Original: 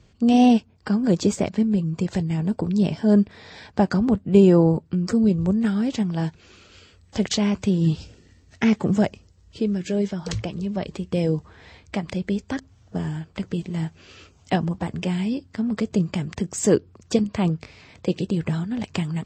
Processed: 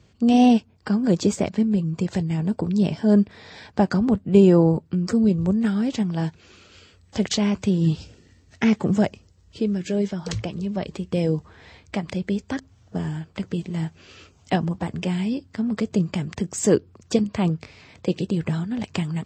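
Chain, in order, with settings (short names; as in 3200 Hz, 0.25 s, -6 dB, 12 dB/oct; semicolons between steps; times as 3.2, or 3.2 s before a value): HPF 55 Hz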